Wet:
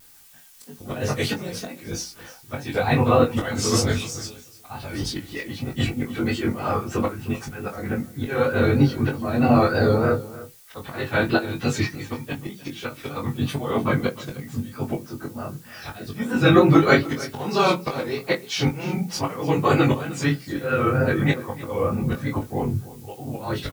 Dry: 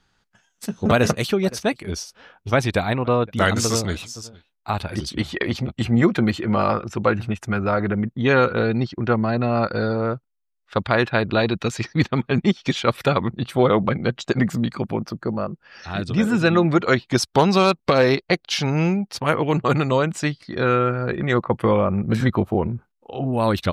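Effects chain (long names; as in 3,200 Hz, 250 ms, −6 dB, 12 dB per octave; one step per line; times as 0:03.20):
random phases in long frames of 50 ms
mains-hum notches 60/120/180 Hz
volume swells 430 ms
background noise blue −53 dBFS
pitch vibrato 3.2 Hz 86 cents
double-tracking delay 21 ms −4 dB
single-tap delay 304 ms −17.5 dB
on a send at −7 dB: convolution reverb RT60 0.25 s, pre-delay 3 ms
on the sum: level +1 dB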